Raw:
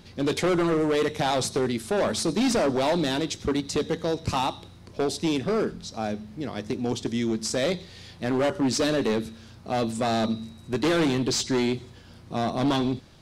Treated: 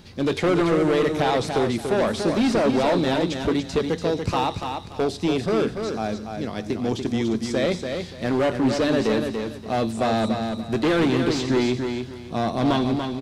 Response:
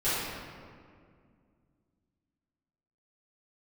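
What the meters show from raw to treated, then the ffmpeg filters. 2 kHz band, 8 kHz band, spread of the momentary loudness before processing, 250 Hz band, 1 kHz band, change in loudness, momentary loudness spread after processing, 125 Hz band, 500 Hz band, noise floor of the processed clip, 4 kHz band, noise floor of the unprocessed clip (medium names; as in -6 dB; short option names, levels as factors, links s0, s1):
+3.0 dB, -5.5 dB, 10 LU, +3.5 dB, +3.5 dB, +3.0 dB, 8 LU, +3.5 dB, +3.5 dB, -37 dBFS, 0.0 dB, -48 dBFS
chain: -filter_complex "[0:a]acrossover=split=3700[s0][s1];[s1]acompressor=threshold=0.00794:ratio=4:attack=1:release=60[s2];[s0][s2]amix=inputs=2:normalize=0,aecho=1:1:288|576|864:0.501|0.13|0.0339,volume=1.33"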